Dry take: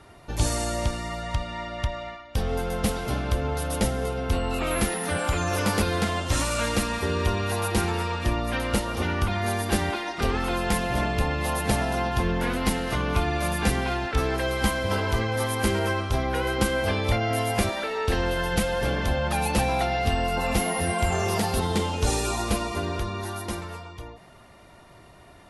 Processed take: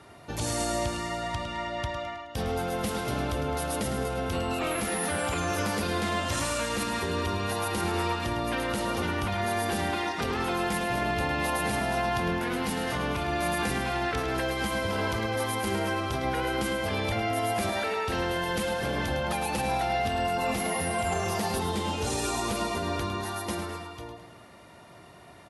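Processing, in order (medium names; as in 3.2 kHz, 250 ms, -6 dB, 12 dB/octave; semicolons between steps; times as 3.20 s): high-pass 95 Hz 12 dB/octave; peak limiter -20.5 dBFS, peak gain reduction 10 dB; on a send: feedback delay 106 ms, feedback 49%, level -9 dB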